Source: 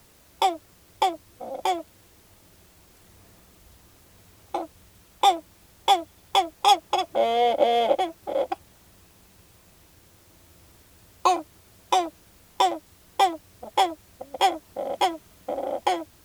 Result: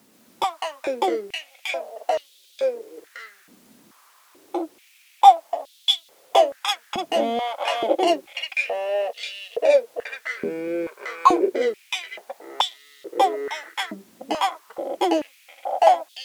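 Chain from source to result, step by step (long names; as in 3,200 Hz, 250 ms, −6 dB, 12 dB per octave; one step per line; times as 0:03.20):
delay with pitch and tempo change per echo 125 ms, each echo −3 semitones, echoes 3
high-pass on a step sequencer 2.3 Hz 230–3,500 Hz
level −3 dB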